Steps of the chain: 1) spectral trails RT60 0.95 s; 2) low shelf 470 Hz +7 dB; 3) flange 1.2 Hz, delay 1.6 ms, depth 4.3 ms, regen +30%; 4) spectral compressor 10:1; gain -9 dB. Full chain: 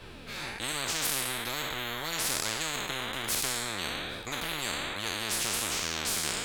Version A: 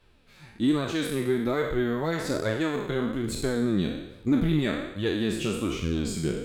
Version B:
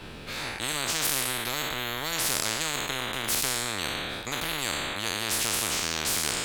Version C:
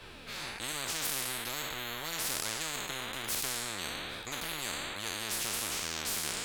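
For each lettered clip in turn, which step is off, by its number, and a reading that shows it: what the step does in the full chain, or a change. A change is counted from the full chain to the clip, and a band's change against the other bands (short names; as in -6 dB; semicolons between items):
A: 4, 250 Hz band +19.0 dB; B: 3, loudness change +3.0 LU; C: 2, loudness change -3.5 LU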